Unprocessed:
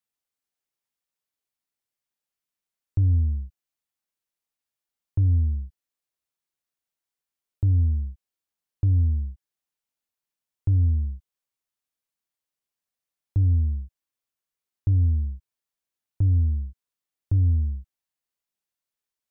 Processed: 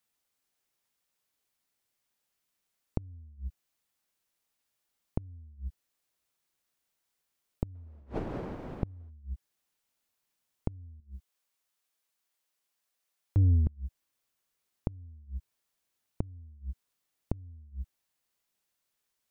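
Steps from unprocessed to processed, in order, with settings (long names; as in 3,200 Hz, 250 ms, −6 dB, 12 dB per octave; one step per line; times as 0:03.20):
0:07.74–0:09.09: wind on the microphone 460 Hz −35 dBFS
0:11.00–0:13.67: low-shelf EQ 260 Hz −11.5 dB
gate with flip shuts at −22 dBFS, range −35 dB
level +7 dB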